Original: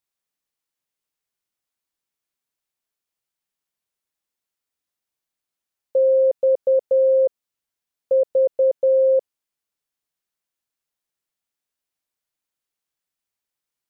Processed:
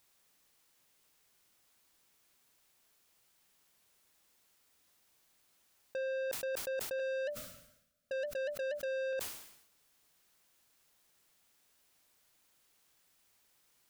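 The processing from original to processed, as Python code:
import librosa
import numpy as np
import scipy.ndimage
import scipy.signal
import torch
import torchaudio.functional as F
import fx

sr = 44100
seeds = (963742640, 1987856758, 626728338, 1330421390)

y = fx.curve_eq(x, sr, hz=(250.0, 390.0, 590.0, 860.0, 1300.0, 1800.0), db=(0, -22, 6, -28, -4, -12), at=(6.99, 9.13))
y = fx.over_compress(y, sr, threshold_db=-28.0, ratio=-1.0)
y = 10.0 ** (-38.0 / 20.0) * np.tanh(y / 10.0 ** (-38.0 / 20.0))
y = fx.sustainer(y, sr, db_per_s=70.0)
y = y * 10.0 ** (3.0 / 20.0)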